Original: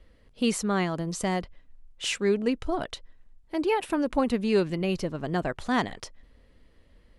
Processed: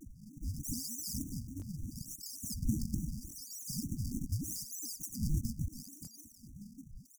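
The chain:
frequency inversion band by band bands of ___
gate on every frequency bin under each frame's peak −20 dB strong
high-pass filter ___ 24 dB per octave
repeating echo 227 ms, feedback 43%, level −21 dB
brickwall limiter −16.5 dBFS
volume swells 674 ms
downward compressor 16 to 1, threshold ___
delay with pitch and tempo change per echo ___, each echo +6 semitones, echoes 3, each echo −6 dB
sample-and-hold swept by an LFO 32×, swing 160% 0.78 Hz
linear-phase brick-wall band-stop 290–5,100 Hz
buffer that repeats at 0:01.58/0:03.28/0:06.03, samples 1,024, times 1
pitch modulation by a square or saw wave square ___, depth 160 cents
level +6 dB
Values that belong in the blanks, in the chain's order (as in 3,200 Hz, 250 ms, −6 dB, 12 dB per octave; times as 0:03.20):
1,000 Hz, 230 Hz, −32 dBFS, 363 ms, 3.4 Hz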